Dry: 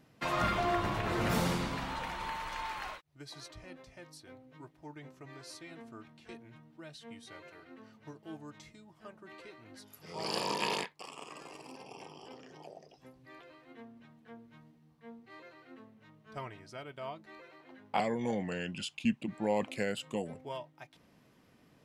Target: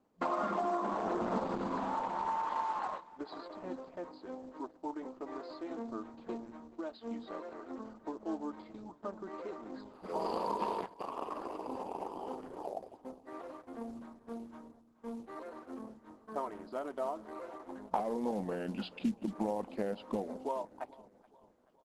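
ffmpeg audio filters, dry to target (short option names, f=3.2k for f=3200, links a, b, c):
-af "agate=range=-18dB:threshold=-58dB:ratio=16:detection=peak,afftfilt=real='re*between(b*sr/4096,180,5000)':imag='im*between(b*sr/4096,180,5000)':win_size=4096:overlap=0.75,highshelf=f=1.5k:t=q:w=1.5:g=-12.5,acompressor=threshold=-41dB:ratio=5,acrusher=bits=6:mode=log:mix=0:aa=0.000001,aecho=1:1:428|856|1284|1712:0.0944|0.0453|0.0218|0.0104,volume=9.5dB" -ar 48000 -c:a libopus -b:a 12k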